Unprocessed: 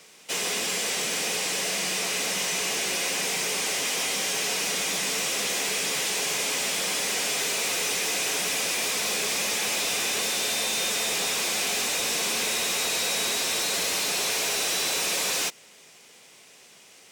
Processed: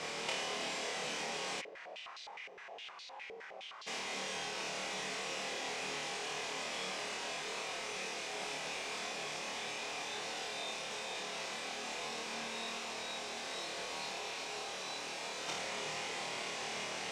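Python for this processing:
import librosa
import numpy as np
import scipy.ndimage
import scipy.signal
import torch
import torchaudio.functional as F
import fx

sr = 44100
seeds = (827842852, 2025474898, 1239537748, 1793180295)

y = fx.peak_eq(x, sr, hz=830.0, db=6.0, octaves=0.92)
y = fx.over_compress(y, sr, threshold_db=-35.0, ratio=-0.5)
y = fx.air_absorb(y, sr, metres=96.0)
y = fx.room_flutter(y, sr, wall_m=4.5, rt60_s=0.56)
y = fx.filter_held_bandpass(y, sr, hz=9.7, low_hz=460.0, high_hz=4200.0, at=(1.6, 3.86), fade=0.02)
y = F.gain(torch.from_numpy(y), -2.0).numpy()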